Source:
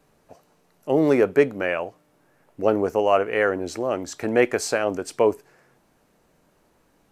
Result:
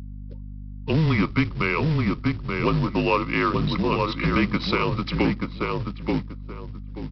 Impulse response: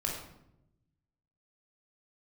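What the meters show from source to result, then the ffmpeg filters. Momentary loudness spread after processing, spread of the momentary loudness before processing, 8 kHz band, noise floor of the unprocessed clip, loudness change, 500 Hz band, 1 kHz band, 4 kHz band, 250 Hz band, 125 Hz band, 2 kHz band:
16 LU, 9 LU, under -15 dB, -63 dBFS, -1.5 dB, -7.0 dB, +1.5 dB, +6.5 dB, +3.5 dB, +13.5 dB, +1.5 dB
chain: -filter_complex "[0:a]superequalizer=6b=2.24:9b=0.631:10b=3.16:12b=3.16:13b=3.16,afreqshift=-160,acrossover=split=250|1300[a][b][c];[c]alimiter=limit=-13.5dB:level=0:latency=1:release=402[d];[a][b][d]amix=inputs=3:normalize=0,highshelf=f=3.4k:g=10.5,afftdn=nr=24:nf=-36,asplit=2[e][f];[f]adelay=881,lowpass=f=1.9k:p=1,volume=-5dB,asplit=2[g][h];[h]adelay=881,lowpass=f=1.9k:p=1,volume=0.23,asplit=2[i][j];[j]adelay=881,lowpass=f=1.9k:p=1,volume=0.23[k];[e][g][i][k]amix=inputs=4:normalize=0,adynamicsmooth=sensitivity=6:basefreq=1.6k,aresample=11025,acrusher=bits=4:mode=log:mix=0:aa=0.000001,aresample=44100,acompressor=threshold=-20dB:ratio=2.5,aeval=exprs='val(0)+0.0178*(sin(2*PI*50*n/s)+sin(2*PI*2*50*n/s)/2+sin(2*PI*3*50*n/s)/3+sin(2*PI*4*50*n/s)/4+sin(2*PI*5*50*n/s)/5)':c=same"

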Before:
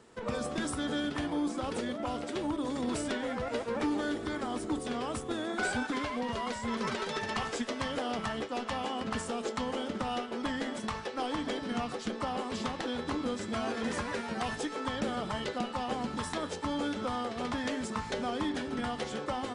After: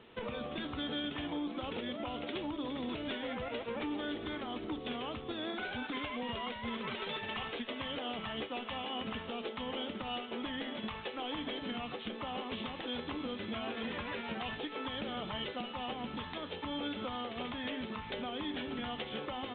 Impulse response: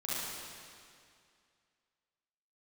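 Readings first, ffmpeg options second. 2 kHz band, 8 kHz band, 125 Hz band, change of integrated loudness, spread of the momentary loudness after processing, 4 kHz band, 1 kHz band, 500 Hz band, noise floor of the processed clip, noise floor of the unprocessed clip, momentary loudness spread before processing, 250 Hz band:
-4.0 dB, under -35 dB, -6.0 dB, -4.5 dB, 2 LU, +0.5 dB, -6.0 dB, -5.5 dB, -45 dBFS, -41 dBFS, 3 LU, -5.5 dB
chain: -af "alimiter=level_in=6dB:limit=-24dB:level=0:latency=1:release=319,volume=-6dB,aexciter=amount=1.4:drive=9.1:freq=2.3k" -ar 8000 -c:a pcm_mulaw

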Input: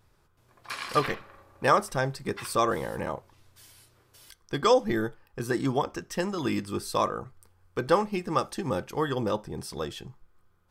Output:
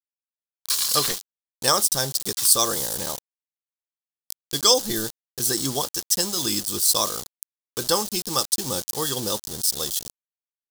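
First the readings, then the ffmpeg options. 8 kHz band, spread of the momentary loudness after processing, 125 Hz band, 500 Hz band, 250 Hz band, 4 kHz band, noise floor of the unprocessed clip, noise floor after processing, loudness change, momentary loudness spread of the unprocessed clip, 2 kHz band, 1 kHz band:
+21.5 dB, 14 LU, -2.0 dB, -1.5 dB, -1.5 dB, +15.5 dB, -65 dBFS, under -85 dBFS, +7.0 dB, 13 LU, -1.5 dB, -1.5 dB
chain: -af "aeval=exprs='val(0)*gte(abs(val(0)),0.0133)':c=same,aexciter=amount=11.3:drive=5:freq=3.5k,volume=-1.5dB"

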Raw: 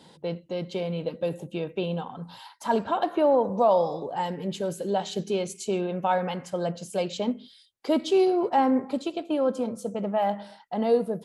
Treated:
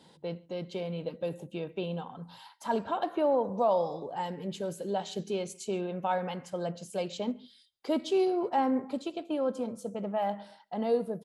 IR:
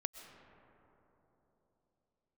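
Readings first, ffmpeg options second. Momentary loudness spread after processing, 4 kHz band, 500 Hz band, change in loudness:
12 LU, -5.5 dB, -5.5 dB, -5.5 dB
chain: -filter_complex "[0:a]asplit=2[a][b];[b]adelay=139.9,volume=-28dB,highshelf=f=4k:g=-3.15[c];[a][c]amix=inputs=2:normalize=0,volume=-5.5dB"

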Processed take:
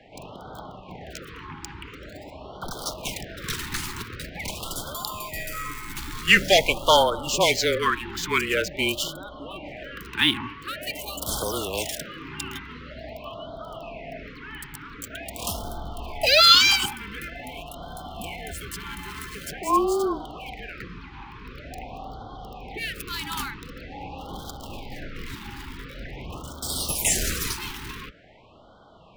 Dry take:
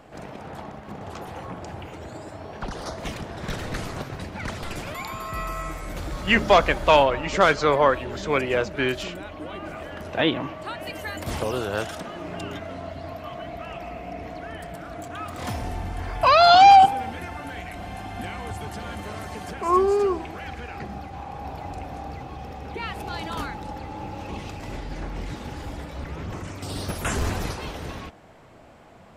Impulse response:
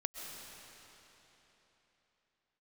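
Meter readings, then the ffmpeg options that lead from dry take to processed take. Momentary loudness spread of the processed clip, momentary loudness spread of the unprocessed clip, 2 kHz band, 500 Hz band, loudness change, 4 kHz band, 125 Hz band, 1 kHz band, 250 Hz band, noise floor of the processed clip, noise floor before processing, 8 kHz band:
21 LU, 18 LU, +2.0 dB, -4.0 dB, 0.0 dB, +7.5 dB, -5.0 dB, -8.5 dB, -2.5 dB, -44 dBFS, -40 dBFS, +11.0 dB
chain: -filter_complex "[0:a]acrossover=split=120|740|3600[a][b][c][d];[d]aeval=exprs='sgn(val(0))*max(abs(val(0))-0.00335,0)':c=same[e];[a][b][c][e]amix=inputs=4:normalize=0,crystalizer=i=7.5:c=0,afreqshift=-24,afftfilt=real='re*(1-between(b*sr/1024,560*pow(2200/560,0.5+0.5*sin(2*PI*0.46*pts/sr))/1.41,560*pow(2200/560,0.5+0.5*sin(2*PI*0.46*pts/sr))*1.41))':imag='im*(1-between(b*sr/1024,560*pow(2200/560,0.5+0.5*sin(2*PI*0.46*pts/sr))/1.41,560*pow(2200/560,0.5+0.5*sin(2*PI*0.46*pts/sr))*1.41))':win_size=1024:overlap=0.75,volume=-4dB"

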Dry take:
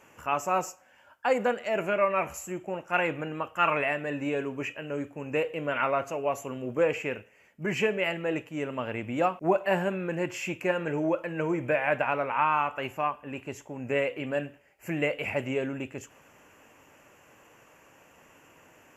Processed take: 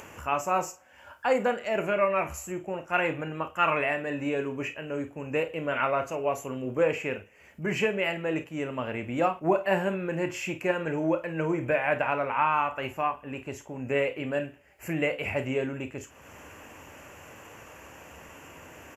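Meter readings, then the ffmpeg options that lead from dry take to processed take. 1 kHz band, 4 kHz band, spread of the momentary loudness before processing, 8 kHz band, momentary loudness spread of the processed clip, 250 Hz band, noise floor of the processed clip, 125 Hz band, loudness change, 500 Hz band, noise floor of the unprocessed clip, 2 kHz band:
+0.5 dB, +0.5 dB, 10 LU, +0.5 dB, 22 LU, +1.0 dB, -54 dBFS, +1.5 dB, +0.5 dB, +0.5 dB, -59 dBFS, +0.5 dB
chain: -filter_complex "[0:a]equalizer=f=73:w=2.6:g=12.5,acompressor=mode=upward:threshold=-38dB:ratio=2.5,asplit=2[a][b];[b]aecho=0:1:31|50:0.237|0.188[c];[a][c]amix=inputs=2:normalize=0"

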